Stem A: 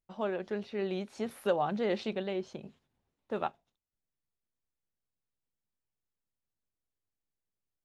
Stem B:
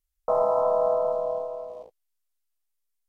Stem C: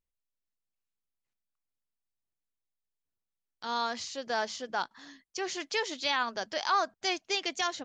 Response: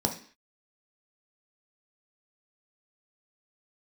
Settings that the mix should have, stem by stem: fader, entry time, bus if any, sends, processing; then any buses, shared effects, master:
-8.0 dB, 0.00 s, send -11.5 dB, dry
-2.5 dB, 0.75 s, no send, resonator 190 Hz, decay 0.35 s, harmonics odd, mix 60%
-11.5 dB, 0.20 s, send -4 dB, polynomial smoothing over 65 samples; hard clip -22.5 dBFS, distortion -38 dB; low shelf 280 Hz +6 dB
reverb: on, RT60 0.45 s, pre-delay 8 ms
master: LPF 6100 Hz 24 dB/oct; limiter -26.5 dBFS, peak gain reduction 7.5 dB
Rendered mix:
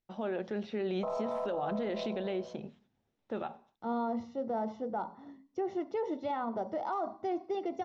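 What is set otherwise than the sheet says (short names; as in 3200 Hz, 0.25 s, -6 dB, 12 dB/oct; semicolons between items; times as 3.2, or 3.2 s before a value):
stem A -8.0 dB -> +0.5 dB; stem C -11.5 dB -> -2.5 dB; reverb return -8.0 dB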